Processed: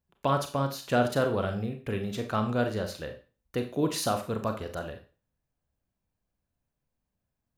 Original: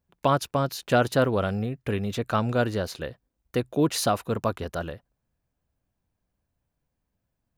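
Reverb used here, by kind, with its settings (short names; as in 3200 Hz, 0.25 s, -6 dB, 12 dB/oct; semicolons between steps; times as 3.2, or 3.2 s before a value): Schroeder reverb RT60 0.35 s, combs from 29 ms, DRR 5.5 dB; gain -5 dB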